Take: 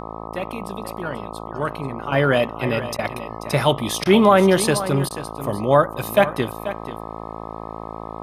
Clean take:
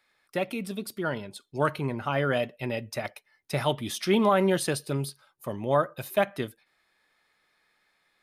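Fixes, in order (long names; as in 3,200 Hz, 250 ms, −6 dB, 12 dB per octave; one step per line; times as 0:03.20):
hum removal 55 Hz, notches 23
repair the gap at 0:02.97/0:04.04/0:05.09, 15 ms
echo removal 486 ms −13 dB
level correction −8.5 dB, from 0:02.12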